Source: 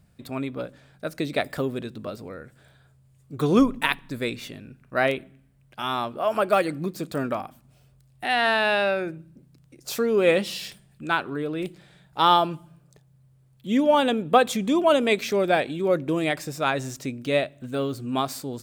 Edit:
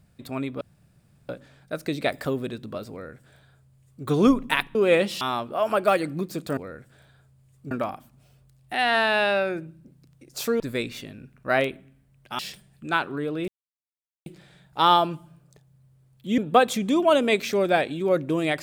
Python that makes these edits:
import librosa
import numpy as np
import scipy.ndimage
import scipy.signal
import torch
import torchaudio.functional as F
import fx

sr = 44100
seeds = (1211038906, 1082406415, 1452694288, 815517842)

y = fx.edit(x, sr, fx.insert_room_tone(at_s=0.61, length_s=0.68),
    fx.duplicate(start_s=2.23, length_s=1.14, to_s=7.22),
    fx.swap(start_s=4.07, length_s=1.79, other_s=10.11, other_length_s=0.46),
    fx.insert_silence(at_s=11.66, length_s=0.78),
    fx.cut(start_s=13.78, length_s=0.39), tone=tone)